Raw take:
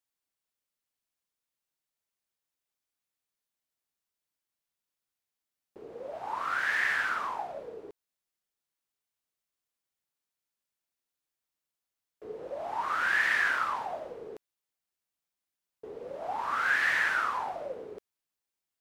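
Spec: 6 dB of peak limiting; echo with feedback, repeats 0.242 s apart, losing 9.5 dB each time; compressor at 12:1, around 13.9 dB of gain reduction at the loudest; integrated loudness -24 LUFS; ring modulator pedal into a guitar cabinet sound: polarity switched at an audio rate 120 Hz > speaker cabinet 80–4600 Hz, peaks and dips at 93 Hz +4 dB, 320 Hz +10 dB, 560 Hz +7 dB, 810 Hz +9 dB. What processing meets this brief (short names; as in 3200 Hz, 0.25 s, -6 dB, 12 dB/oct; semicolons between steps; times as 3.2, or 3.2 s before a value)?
compressor 12:1, threshold -37 dBFS; limiter -34.5 dBFS; feedback echo 0.242 s, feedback 33%, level -9.5 dB; polarity switched at an audio rate 120 Hz; speaker cabinet 80–4600 Hz, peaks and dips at 93 Hz +4 dB, 320 Hz +10 dB, 560 Hz +7 dB, 810 Hz +9 dB; gain +14.5 dB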